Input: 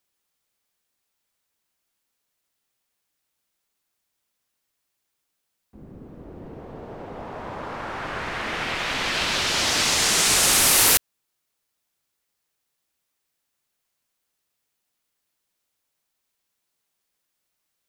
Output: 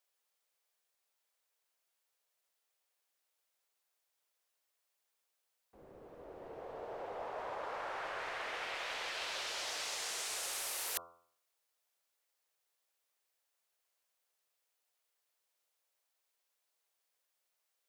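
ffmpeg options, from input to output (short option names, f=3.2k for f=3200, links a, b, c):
-af "lowshelf=f=340:t=q:w=1.5:g=-13.5,bandreject=f=85.55:t=h:w=4,bandreject=f=171.1:t=h:w=4,bandreject=f=256.65:t=h:w=4,bandreject=f=342.2:t=h:w=4,bandreject=f=427.75:t=h:w=4,bandreject=f=513.3:t=h:w=4,bandreject=f=598.85:t=h:w=4,bandreject=f=684.4:t=h:w=4,bandreject=f=769.95:t=h:w=4,bandreject=f=855.5:t=h:w=4,bandreject=f=941.05:t=h:w=4,bandreject=f=1.0266k:t=h:w=4,bandreject=f=1.11215k:t=h:w=4,bandreject=f=1.1977k:t=h:w=4,bandreject=f=1.28325k:t=h:w=4,bandreject=f=1.3688k:t=h:w=4,bandreject=f=1.45435k:t=h:w=4,areverse,acompressor=threshold=-32dB:ratio=10,areverse,volume=-5.5dB"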